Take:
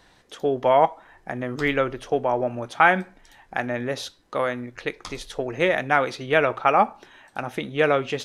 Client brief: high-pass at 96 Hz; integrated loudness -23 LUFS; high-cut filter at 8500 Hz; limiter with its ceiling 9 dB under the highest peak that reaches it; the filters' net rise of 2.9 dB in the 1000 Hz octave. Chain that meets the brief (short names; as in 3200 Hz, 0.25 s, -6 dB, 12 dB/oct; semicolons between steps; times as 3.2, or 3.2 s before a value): HPF 96 Hz; LPF 8500 Hz; bell 1000 Hz +4 dB; gain +1.5 dB; limiter -7.5 dBFS